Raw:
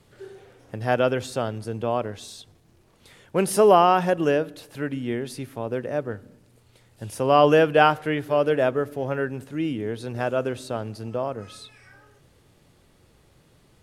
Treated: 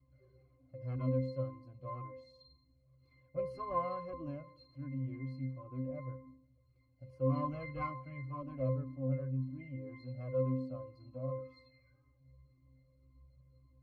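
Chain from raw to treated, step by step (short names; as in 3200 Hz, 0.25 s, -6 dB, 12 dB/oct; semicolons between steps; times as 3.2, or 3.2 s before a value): one diode to ground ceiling -19 dBFS; octave resonator C, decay 0.61 s; cascading flanger falling 1.9 Hz; gain +9 dB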